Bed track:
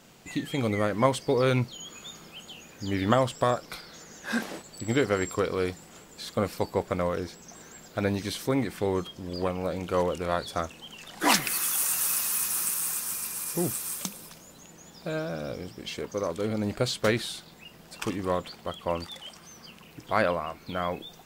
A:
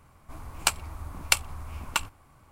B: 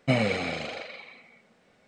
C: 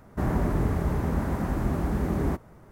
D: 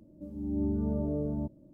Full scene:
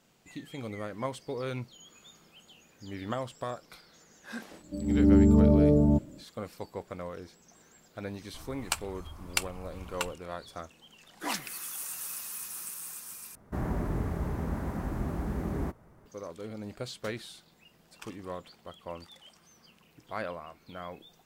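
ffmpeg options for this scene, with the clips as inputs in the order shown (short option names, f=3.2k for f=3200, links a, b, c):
-filter_complex "[0:a]volume=-11.5dB[a];[4:a]dynaudnorm=f=100:g=5:m=12dB[b];[a]asplit=2[c][d];[c]atrim=end=13.354[e];[3:a]atrim=end=2.71,asetpts=PTS-STARTPTS,volume=-6.5dB[f];[d]atrim=start=16.056[g];[b]atrim=end=1.73,asetpts=PTS-STARTPTS,volume=-1.5dB,afade=t=in:d=0.004:c=hsin,afade=t=out:st=1.726:d=0.004:c=hsin,adelay=4510[h];[1:a]atrim=end=2.51,asetpts=PTS-STARTPTS,volume=-7dB,afade=t=in:d=0.004:c=hsin,afade=t=out:st=2.506:d=0.004:c=hsin,adelay=8050[i];[e][f]acrossfade=d=0.004:c1=hsin:c2=hsin[j];[j][g]acrossfade=d=0.004:c1=hsin:c2=hsin[k];[k][h][i]amix=inputs=3:normalize=0"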